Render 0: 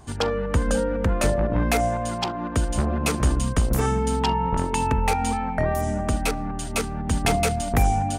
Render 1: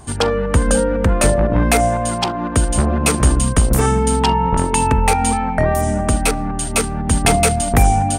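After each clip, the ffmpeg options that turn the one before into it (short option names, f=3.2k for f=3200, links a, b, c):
-af "equalizer=f=8.8k:w=6.6:g=10.5,volume=7dB"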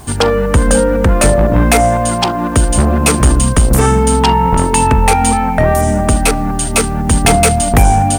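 -af "asoftclip=type=tanh:threshold=-7dB,acrusher=bits=7:mix=0:aa=0.000001,volume=6dB"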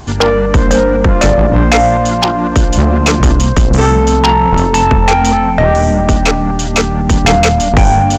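-af "aresample=16000,aresample=44100,acontrast=23,volume=-2dB"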